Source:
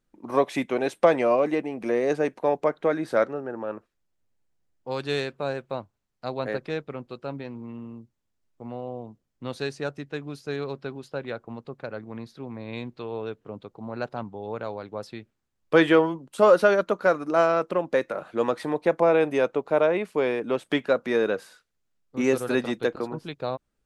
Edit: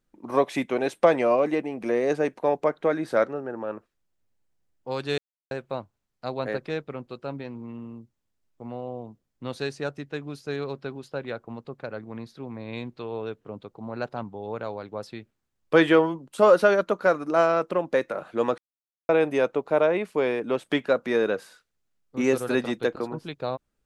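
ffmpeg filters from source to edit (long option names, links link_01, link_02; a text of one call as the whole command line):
ffmpeg -i in.wav -filter_complex "[0:a]asplit=5[link_01][link_02][link_03][link_04][link_05];[link_01]atrim=end=5.18,asetpts=PTS-STARTPTS,afade=type=out:start_time=5.176:duration=0.004:curve=hsin[link_06];[link_02]atrim=start=5.18:end=5.51,asetpts=PTS-STARTPTS,volume=0[link_07];[link_03]atrim=start=5.51:end=18.58,asetpts=PTS-STARTPTS,afade=type=in:duration=0.004:curve=hsin,afade=type=out:start_time=13.066:duration=0.004:curve=hsin[link_08];[link_04]atrim=start=18.58:end=19.09,asetpts=PTS-STARTPTS,volume=0[link_09];[link_05]atrim=start=19.09,asetpts=PTS-STARTPTS,afade=type=in:duration=0.004:curve=hsin[link_10];[link_06][link_07][link_08][link_09][link_10]concat=n=5:v=0:a=1" out.wav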